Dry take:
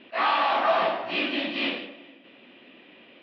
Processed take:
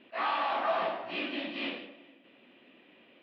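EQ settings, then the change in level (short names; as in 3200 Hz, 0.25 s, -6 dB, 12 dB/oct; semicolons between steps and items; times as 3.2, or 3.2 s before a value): high shelf 4300 Hz -6 dB; -7.0 dB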